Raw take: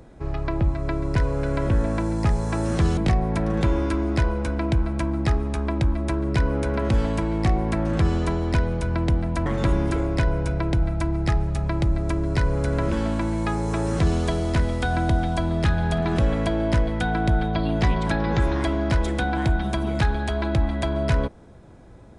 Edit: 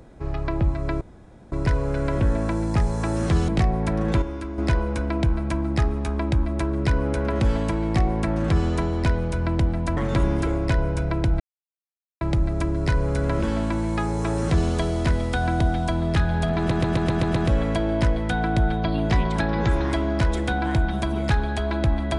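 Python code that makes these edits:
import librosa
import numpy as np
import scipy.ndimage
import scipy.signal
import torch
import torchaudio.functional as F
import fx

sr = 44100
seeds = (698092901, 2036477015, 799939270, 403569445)

y = fx.edit(x, sr, fx.insert_room_tone(at_s=1.01, length_s=0.51),
    fx.clip_gain(start_s=3.71, length_s=0.36, db=-8.0),
    fx.silence(start_s=10.89, length_s=0.81),
    fx.stutter(start_s=16.07, slice_s=0.13, count=7), tone=tone)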